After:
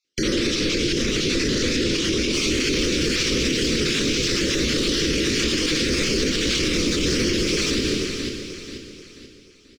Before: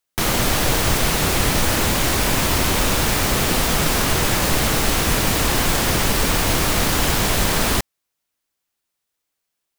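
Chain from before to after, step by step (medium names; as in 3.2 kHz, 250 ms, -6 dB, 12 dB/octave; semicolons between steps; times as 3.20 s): random holes in the spectrogram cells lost 31%; FFT filter 110 Hz 0 dB, 220 Hz +6 dB, 330 Hz +14 dB, 500 Hz +7 dB, 800 Hz -27 dB, 1.2 kHz -7 dB, 2.3 kHz +6 dB, 5.6 kHz +8 dB, 14 kHz -25 dB; feedback delay 485 ms, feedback 42%, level -13 dB; plate-style reverb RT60 1.7 s, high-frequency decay 0.9×, DRR 2.5 dB; peak limiter -11.5 dBFS, peak gain reduction 10.5 dB; treble shelf 8.9 kHz -3 dB, from 2.34 s +3.5 dB; trim -1.5 dB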